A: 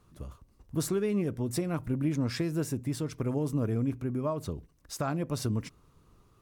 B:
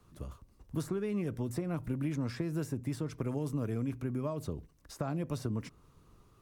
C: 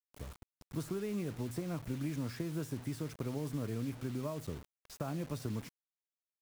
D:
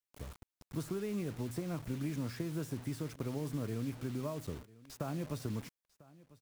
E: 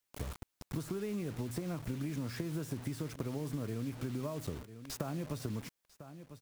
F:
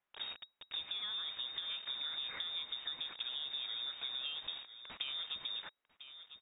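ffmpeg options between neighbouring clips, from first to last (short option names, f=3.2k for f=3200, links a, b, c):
-filter_complex "[0:a]acrossover=split=150|880|1800[a][b][c][d];[a]acompressor=threshold=-39dB:ratio=4[e];[b]acompressor=threshold=-34dB:ratio=4[f];[c]acompressor=threshold=-51dB:ratio=4[g];[d]acompressor=threshold=-51dB:ratio=4[h];[e][f][g][h]amix=inputs=4:normalize=0"
-af "acrusher=bits=7:mix=0:aa=0.000001,volume=-3.5dB"
-af "aecho=1:1:997:0.0841"
-af "acompressor=threshold=-44dB:ratio=6,volume=9dB"
-af "crystalizer=i=6:c=0,lowpass=f=3.2k:t=q:w=0.5098,lowpass=f=3.2k:t=q:w=0.6013,lowpass=f=3.2k:t=q:w=0.9,lowpass=f=3.2k:t=q:w=2.563,afreqshift=-3800,volume=-4dB"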